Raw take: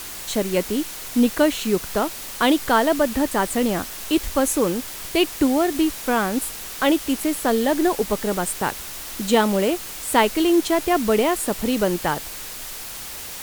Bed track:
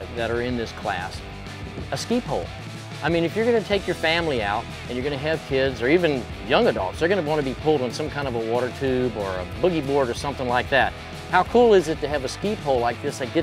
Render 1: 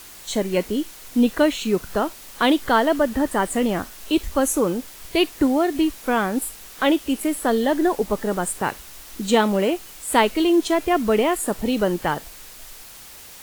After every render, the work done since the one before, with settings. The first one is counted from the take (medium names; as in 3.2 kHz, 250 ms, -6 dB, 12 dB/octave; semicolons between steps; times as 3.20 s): noise print and reduce 8 dB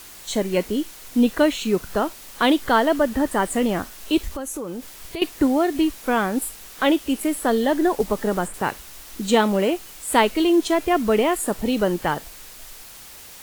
4.28–5.22 s: compression 4:1, threshold -28 dBFS; 8.00–8.54 s: three bands compressed up and down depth 100%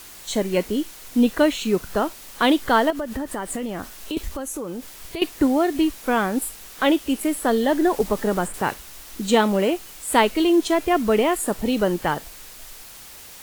2.90–4.17 s: compression, threshold -24 dBFS; 7.69–8.74 s: companding laws mixed up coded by mu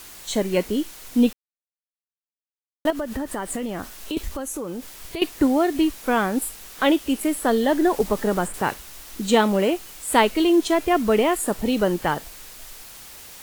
1.33–2.85 s: mute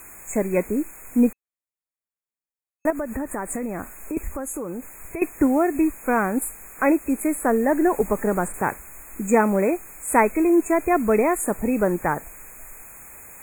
FFT band-reject 2.6–6.5 kHz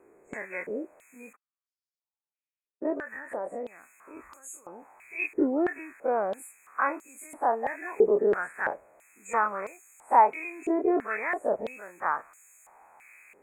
every event in the spectrogram widened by 60 ms; step-sequenced band-pass 3 Hz 410–5000 Hz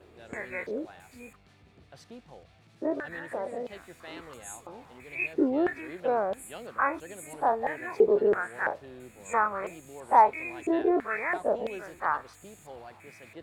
add bed track -24.5 dB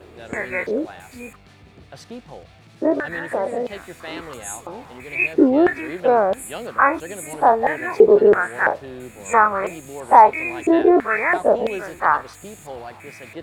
trim +11 dB; peak limiter -1 dBFS, peak gain reduction 3 dB